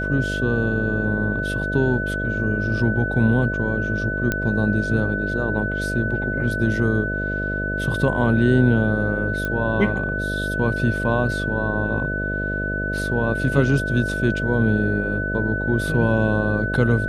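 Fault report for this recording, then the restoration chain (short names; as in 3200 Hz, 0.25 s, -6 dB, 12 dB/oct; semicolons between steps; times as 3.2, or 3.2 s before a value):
buzz 50 Hz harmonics 13 -27 dBFS
tone 1500 Hz -25 dBFS
4.32 pop -8 dBFS
9.45 pop -14 dBFS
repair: de-click; de-hum 50 Hz, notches 13; notch 1500 Hz, Q 30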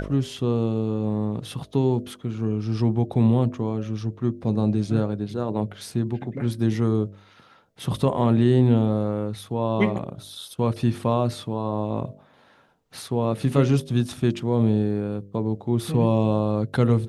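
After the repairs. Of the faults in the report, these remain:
none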